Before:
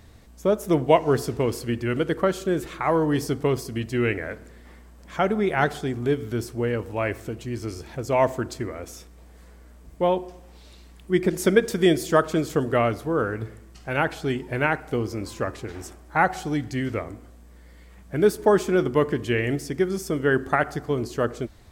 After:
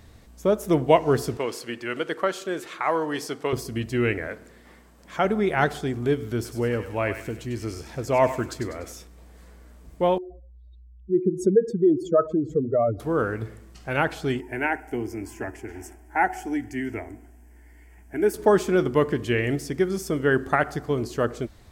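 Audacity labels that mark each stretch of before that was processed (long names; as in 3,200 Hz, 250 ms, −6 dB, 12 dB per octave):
1.370000	3.530000	meter weighting curve A
4.270000	5.250000	low-shelf EQ 100 Hz −11 dB
6.350000	8.930000	feedback echo with a high-pass in the loop 98 ms, feedback 50%, high-pass 1,200 Hz, level −8 dB
10.180000	13.000000	expanding power law on the bin magnitudes exponent 2.7
14.400000	18.340000	phaser with its sweep stopped centre 790 Hz, stages 8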